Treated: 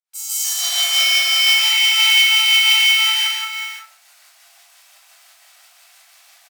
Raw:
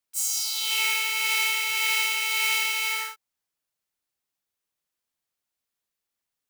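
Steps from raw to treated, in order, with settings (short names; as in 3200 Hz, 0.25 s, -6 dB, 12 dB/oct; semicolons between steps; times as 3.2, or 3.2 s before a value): 0.44–1.45 minimum comb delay 1.7 ms; recorder AGC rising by 38 dB/s; elliptic high-pass 690 Hz, stop band 60 dB; pump 87 bpm, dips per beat 2, -21 dB, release 0.2 s; tapped delay 0.164/0.413/0.538 s -3/-12.5/-10.5 dB; reverb RT60 0.45 s, pre-delay 0.142 s, DRR -9 dB; careless resampling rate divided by 2×, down filtered, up hold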